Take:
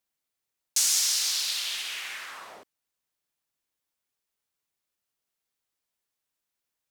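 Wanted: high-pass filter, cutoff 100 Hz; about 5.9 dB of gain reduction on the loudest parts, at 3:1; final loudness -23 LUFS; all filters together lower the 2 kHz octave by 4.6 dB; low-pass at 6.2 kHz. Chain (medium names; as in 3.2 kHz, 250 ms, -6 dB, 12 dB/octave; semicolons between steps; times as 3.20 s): high-pass 100 Hz; low-pass 6.2 kHz; peaking EQ 2 kHz -6 dB; compression 3:1, threshold -32 dBFS; trim +10.5 dB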